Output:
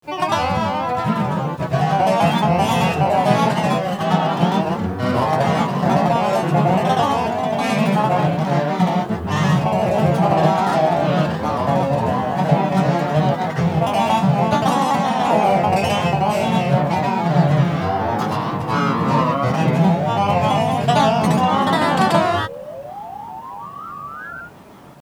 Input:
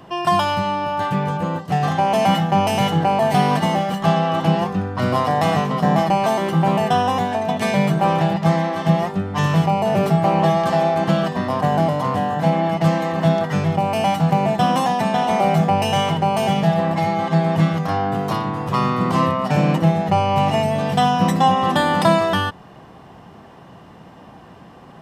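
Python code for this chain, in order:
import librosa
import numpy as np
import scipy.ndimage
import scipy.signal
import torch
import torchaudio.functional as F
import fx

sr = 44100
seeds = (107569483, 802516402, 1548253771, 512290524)

y = fx.spec_paint(x, sr, seeds[0], shape='rise', start_s=22.49, length_s=1.93, low_hz=520.0, high_hz=1700.0, level_db=-33.0)
y = fx.granulator(y, sr, seeds[1], grain_ms=168.0, per_s=23.0, spray_ms=100.0, spread_st=3)
y = fx.quant_dither(y, sr, seeds[2], bits=10, dither='none')
y = y * librosa.db_to_amplitude(5.0)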